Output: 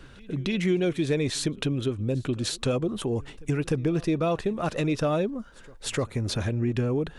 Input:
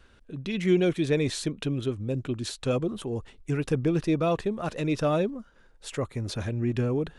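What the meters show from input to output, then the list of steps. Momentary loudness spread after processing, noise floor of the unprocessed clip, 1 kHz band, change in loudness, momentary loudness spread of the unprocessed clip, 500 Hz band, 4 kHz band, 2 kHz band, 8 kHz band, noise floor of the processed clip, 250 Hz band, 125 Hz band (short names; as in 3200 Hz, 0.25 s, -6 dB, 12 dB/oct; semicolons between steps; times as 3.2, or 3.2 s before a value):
6 LU, -57 dBFS, +0.5 dB, +0.5 dB, 10 LU, 0.0 dB, +3.5 dB, +1.5 dB, +4.5 dB, -48 dBFS, +0.5 dB, +1.5 dB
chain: compressor 2.5:1, threshold -34 dBFS, peak gain reduction 11.5 dB; reverse echo 0.301 s -24 dB; gain +8 dB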